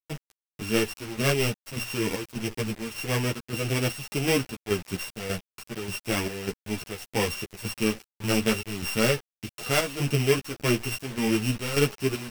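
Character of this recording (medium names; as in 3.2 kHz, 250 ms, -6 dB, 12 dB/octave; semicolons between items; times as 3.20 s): a buzz of ramps at a fixed pitch in blocks of 16 samples; chopped level 1.7 Hz, depth 65%, duty 65%; a quantiser's noise floor 6-bit, dither none; a shimmering, thickened sound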